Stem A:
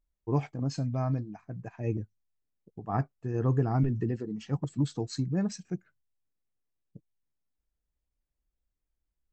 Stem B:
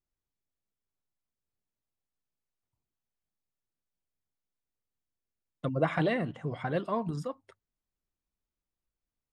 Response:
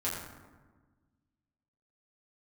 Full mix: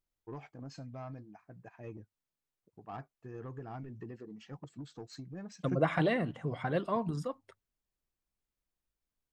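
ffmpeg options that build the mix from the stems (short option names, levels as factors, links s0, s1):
-filter_complex "[0:a]acompressor=threshold=0.0447:ratio=6,asplit=2[s0][s1];[s1]highpass=f=720:p=1,volume=3.55,asoftclip=type=tanh:threshold=0.0562[s2];[s0][s2]amix=inputs=2:normalize=0,lowpass=f=2800:p=1,volume=0.501,volume=1.06[s3];[1:a]volume=0.891,asplit=2[s4][s5];[s5]apad=whole_len=411179[s6];[s3][s6]sidechaingate=range=0.282:threshold=0.00794:ratio=16:detection=peak[s7];[s7][s4]amix=inputs=2:normalize=0"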